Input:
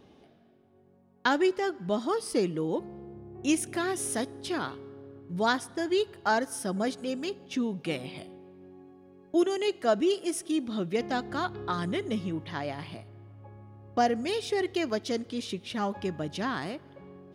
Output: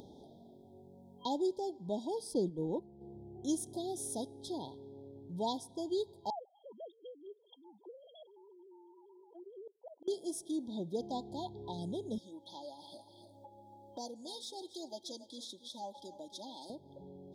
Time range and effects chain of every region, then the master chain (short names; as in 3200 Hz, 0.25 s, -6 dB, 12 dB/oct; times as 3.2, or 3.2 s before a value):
2.34–3.01 gate -32 dBFS, range -8 dB + tilt -1.5 dB/oct
6.3–10.08 sine-wave speech + auto swell 0.501 s + HPF 690 Hz
12.18–16.7 HPF 1200 Hz 6 dB/oct + comb 3.5 ms, depth 69% + echo 0.28 s -14.5 dB
whole clip: FFT band-reject 1000–3200 Hz; upward compressor, threshold -36 dBFS; gain -8 dB